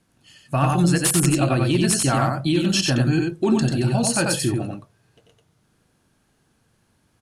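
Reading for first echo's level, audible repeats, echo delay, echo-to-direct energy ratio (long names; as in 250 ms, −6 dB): −3.0 dB, 1, 91 ms, −3.0 dB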